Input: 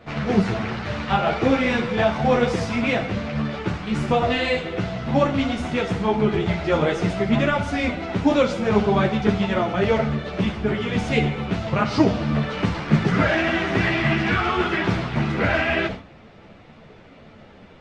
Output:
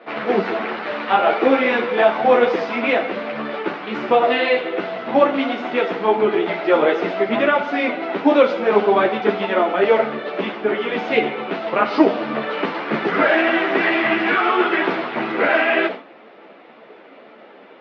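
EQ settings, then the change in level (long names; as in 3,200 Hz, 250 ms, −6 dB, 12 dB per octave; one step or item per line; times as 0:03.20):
high-pass filter 300 Hz 24 dB per octave
low-pass filter 4,900 Hz 12 dB per octave
high-frequency loss of the air 210 metres
+6.5 dB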